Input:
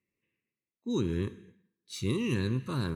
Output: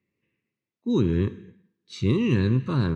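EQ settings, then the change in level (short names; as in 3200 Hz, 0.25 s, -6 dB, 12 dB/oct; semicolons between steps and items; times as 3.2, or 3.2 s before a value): HPF 71 Hz; air absorption 130 m; low shelf 250 Hz +4.5 dB; +6.0 dB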